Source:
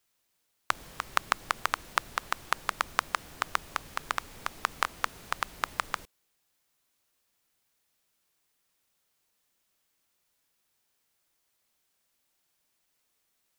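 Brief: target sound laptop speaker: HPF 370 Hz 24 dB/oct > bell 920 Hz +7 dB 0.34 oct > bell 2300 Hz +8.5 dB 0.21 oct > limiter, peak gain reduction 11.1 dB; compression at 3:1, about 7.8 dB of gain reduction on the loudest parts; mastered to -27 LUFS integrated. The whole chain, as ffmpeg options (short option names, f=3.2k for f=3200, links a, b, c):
-af "acompressor=threshold=-33dB:ratio=3,highpass=f=370:w=0.5412,highpass=f=370:w=1.3066,equalizer=f=920:t=o:w=0.34:g=7,equalizer=f=2.3k:t=o:w=0.21:g=8.5,volume=19dB,alimiter=limit=-1dB:level=0:latency=1"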